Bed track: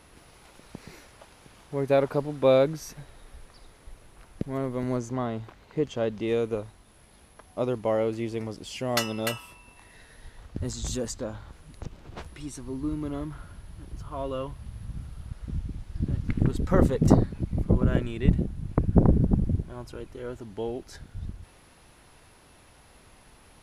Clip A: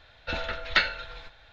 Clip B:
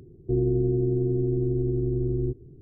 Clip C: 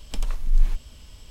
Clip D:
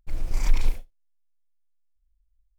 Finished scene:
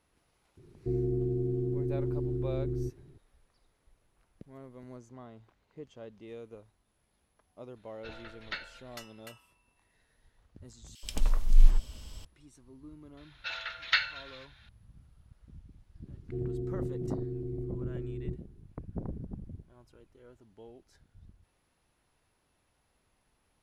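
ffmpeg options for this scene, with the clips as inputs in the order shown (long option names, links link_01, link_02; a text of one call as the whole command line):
ffmpeg -i bed.wav -i cue0.wav -i cue1.wav -i cue2.wav -filter_complex "[2:a]asplit=2[link_01][link_02];[1:a]asplit=2[link_03][link_04];[0:a]volume=-19dB[link_05];[3:a]acrossover=split=2000[link_06][link_07];[link_06]adelay=80[link_08];[link_08][link_07]amix=inputs=2:normalize=0[link_09];[link_04]highpass=1400[link_10];[link_05]asplit=2[link_11][link_12];[link_11]atrim=end=10.954[link_13];[link_09]atrim=end=1.3[link_14];[link_12]atrim=start=12.246[link_15];[link_01]atrim=end=2.61,asetpts=PTS-STARTPTS,volume=-7dB,afade=type=in:duration=0.004:curve=hsin,afade=type=out:start_time=2.606:duration=0.004:curve=hsin,adelay=570[link_16];[link_03]atrim=end=1.52,asetpts=PTS-STARTPTS,volume=-16dB,afade=type=in:duration=0.004:curve=hsin,afade=type=out:start_time=1.516:duration=0.004:curve=hsin,adelay=7760[link_17];[link_10]atrim=end=1.52,asetpts=PTS-STARTPTS,volume=-2.5dB,afade=type=in:duration=0.004:curve=hsin,afade=type=out:start_time=1.516:duration=0.004:curve=hsin,adelay=13170[link_18];[link_02]atrim=end=2.61,asetpts=PTS-STARTPTS,volume=-12dB,afade=type=in:duration=0.004:curve=hsin,afade=type=out:start_time=2.606:duration=0.004:curve=hsin,adelay=16030[link_19];[link_13][link_14]acrossfade=duration=0.004:curve1=hsin:curve2=hsin[link_20];[link_20][link_15]acrossfade=duration=0.004:curve1=hsin:curve2=hsin[link_21];[link_21][link_16][link_17][link_18][link_19]amix=inputs=5:normalize=0" out.wav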